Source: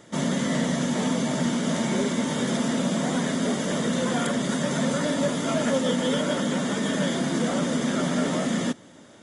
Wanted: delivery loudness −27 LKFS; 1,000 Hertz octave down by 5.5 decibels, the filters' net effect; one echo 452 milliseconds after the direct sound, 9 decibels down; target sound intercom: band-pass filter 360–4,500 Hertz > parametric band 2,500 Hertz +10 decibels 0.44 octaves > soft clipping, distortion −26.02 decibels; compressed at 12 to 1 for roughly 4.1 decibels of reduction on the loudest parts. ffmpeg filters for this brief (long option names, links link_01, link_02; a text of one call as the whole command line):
ffmpeg -i in.wav -af "equalizer=frequency=1000:width_type=o:gain=-8,acompressor=threshold=-25dB:ratio=12,highpass=360,lowpass=4500,equalizer=frequency=2500:width_type=o:width=0.44:gain=10,aecho=1:1:452:0.355,asoftclip=threshold=-21.5dB,volume=6dB" out.wav